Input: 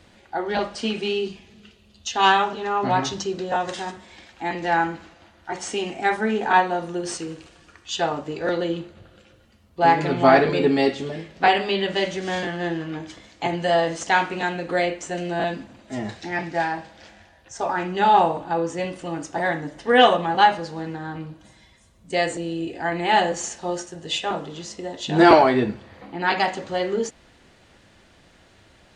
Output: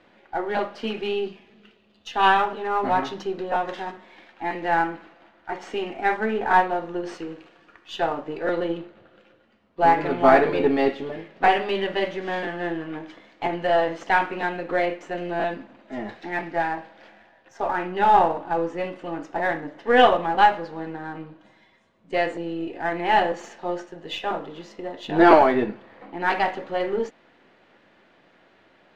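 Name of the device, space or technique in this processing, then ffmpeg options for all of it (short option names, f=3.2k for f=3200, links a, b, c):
crystal radio: -af "highpass=240,lowpass=2.5k,aeval=exprs='if(lt(val(0),0),0.708*val(0),val(0))':c=same,volume=1dB"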